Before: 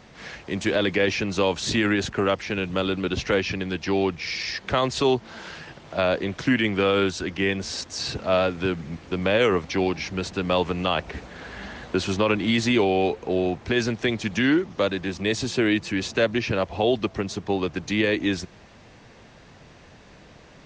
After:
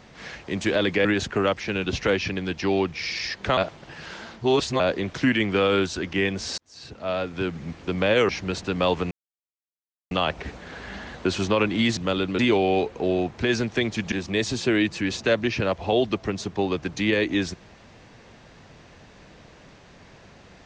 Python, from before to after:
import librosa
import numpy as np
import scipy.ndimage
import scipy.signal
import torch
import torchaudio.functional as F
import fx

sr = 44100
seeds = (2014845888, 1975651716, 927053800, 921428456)

y = fx.edit(x, sr, fx.cut(start_s=1.05, length_s=0.82),
    fx.move(start_s=2.66, length_s=0.42, to_s=12.66),
    fx.reverse_span(start_s=4.81, length_s=1.23),
    fx.fade_in_span(start_s=7.82, length_s=1.11),
    fx.cut(start_s=9.53, length_s=0.45),
    fx.insert_silence(at_s=10.8, length_s=1.0),
    fx.cut(start_s=14.39, length_s=0.64), tone=tone)